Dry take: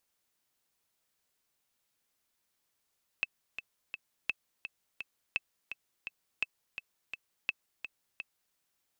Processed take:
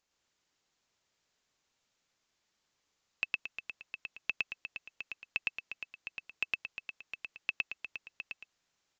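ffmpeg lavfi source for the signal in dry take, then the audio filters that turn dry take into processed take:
-f lavfi -i "aevalsrc='pow(10,(-16.5-9.5*gte(mod(t,3*60/169),60/169))/20)*sin(2*PI*2620*mod(t,60/169))*exp(-6.91*mod(t,60/169)/0.03)':duration=5.32:sample_rate=44100"
-filter_complex "[0:a]asplit=2[link_01][link_02];[link_02]aecho=0:1:110.8|224.5:1|0.355[link_03];[link_01][link_03]amix=inputs=2:normalize=0,aresample=16000,aresample=44100"

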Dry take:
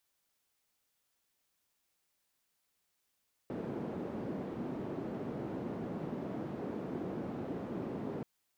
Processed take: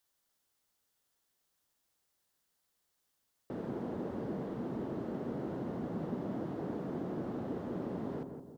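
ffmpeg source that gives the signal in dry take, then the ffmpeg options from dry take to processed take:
-f lavfi -i "anoisesrc=color=white:duration=4.73:sample_rate=44100:seed=1,highpass=frequency=200,lowpass=frequency=280,volume=-12.1dB"
-filter_complex "[0:a]equalizer=frequency=2400:width_type=o:width=0.37:gain=-6,asplit=2[link_01][link_02];[link_02]adelay=167,lowpass=frequency=960:poles=1,volume=-5.5dB,asplit=2[link_03][link_04];[link_04]adelay=167,lowpass=frequency=960:poles=1,volume=0.52,asplit=2[link_05][link_06];[link_06]adelay=167,lowpass=frequency=960:poles=1,volume=0.52,asplit=2[link_07][link_08];[link_08]adelay=167,lowpass=frequency=960:poles=1,volume=0.52,asplit=2[link_09][link_10];[link_10]adelay=167,lowpass=frequency=960:poles=1,volume=0.52,asplit=2[link_11][link_12];[link_12]adelay=167,lowpass=frequency=960:poles=1,volume=0.52,asplit=2[link_13][link_14];[link_14]adelay=167,lowpass=frequency=960:poles=1,volume=0.52[link_15];[link_01][link_03][link_05][link_07][link_09][link_11][link_13][link_15]amix=inputs=8:normalize=0"

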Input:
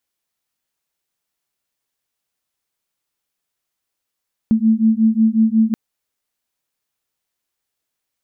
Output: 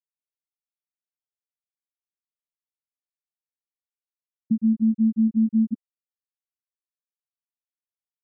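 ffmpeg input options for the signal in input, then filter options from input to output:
-f lavfi -i "aevalsrc='0.188*(sin(2*PI*219*t)+sin(2*PI*224.5*t))':duration=1.23:sample_rate=44100"
-af "alimiter=limit=-14dB:level=0:latency=1:release=332,aeval=exprs='0.2*(cos(1*acos(clip(val(0)/0.2,-1,1)))-cos(1*PI/2))+0.0355*(cos(3*acos(clip(val(0)/0.2,-1,1)))-cos(3*PI/2))':channel_layout=same,afftfilt=real='re*gte(hypot(re,im),0.631)':imag='im*gte(hypot(re,im),0.631)':win_size=1024:overlap=0.75"

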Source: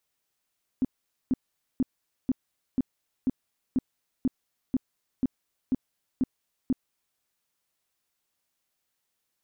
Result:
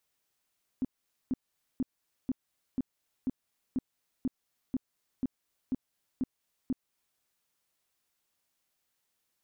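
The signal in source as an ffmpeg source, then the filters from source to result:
-f lavfi -i "aevalsrc='0.1*sin(2*PI*258*mod(t,0.49))*lt(mod(t,0.49),7/258)':duration=6.37:sample_rate=44100"
-af "alimiter=level_in=2dB:limit=-24dB:level=0:latency=1:release=265,volume=-2dB"

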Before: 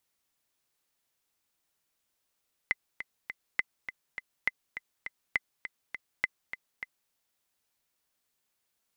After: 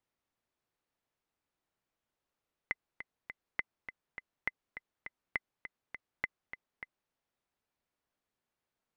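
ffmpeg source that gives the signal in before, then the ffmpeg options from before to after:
-f lavfi -i "aevalsrc='pow(10,(-12.5-11*gte(mod(t,3*60/204),60/204))/20)*sin(2*PI*2040*mod(t,60/204))*exp(-6.91*mod(t,60/204)/0.03)':duration=4.41:sample_rate=44100"
-af "lowpass=frequency=1200:poles=1"

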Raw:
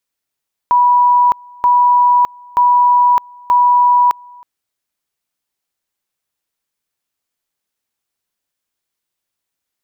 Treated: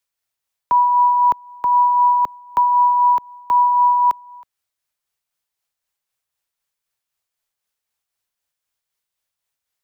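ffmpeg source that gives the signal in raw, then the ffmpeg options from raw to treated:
-f lavfi -i "aevalsrc='pow(10,(-7-28*gte(mod(t,0.93),0.61))/20)*sin(2*PI*978*t)':duration=3.72:sample_rate=44100"
-filter_complex "[0:a]acrossover=split=190|380|500[link_01][link_02][link_03][link_04];[link_02]aeval=exprs='val(0)*gte(abs(val(0)),0.00188)':channel_layout=same[link_05];[link_04]alimiter=limit=-10.5dB:level=0:latency=1:release=19[link_06];[link_01][link_05][link_03][link_06]amix=inputs=4:normalize=0,tremolo=f=3.9:d=0.34"

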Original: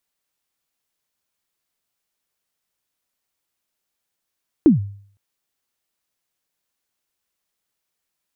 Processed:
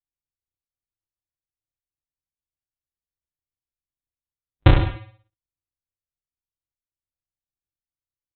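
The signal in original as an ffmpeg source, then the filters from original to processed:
-f lavfi -i "aevalsrc='0.562*pow(10,-3*t/0.54)*sin(2*PI*(350*0.134/log(100/350)*(exp(log(100/350)*min(t,0.134)/0.134)-1)+100*max(t-0.134,0)))':duration=0.51:sample_rate=44100"
-af "afwtdn=0.0141,aresample=8000,acrusher=samples=37:mix=1:aa=0.000001,aresample=44100,aecho=1:1:30|64.5|104.2|149.8|202.3:0.631|0.398|0.251|0.158|0.1"

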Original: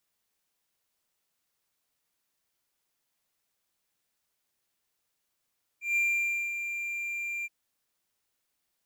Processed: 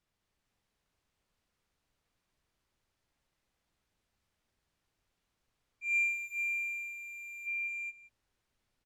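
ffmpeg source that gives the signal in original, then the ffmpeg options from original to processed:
-f lavfi -i "aevalsrc='0.0891*(1-4*abs(mod(2380*t+0.25,1)-0.5))':duration=1.673:sample_rate=44100,afade=type=in:duration=0.151,afade=type=out:start_time=0.151:duration=0.556:silence=0.376,afade=type=out:start_time=1.64:duration=0.033"
-filter_complex "[0:a]aemphasis=mode=reproduction:type=bsi,asplit=2[link_01][link_02];[link_02]aecho=0:1:212|438|611:0.562|0.708|0.1[link_03];[link_01][link_03]amix=inputs=2:normalize=0"

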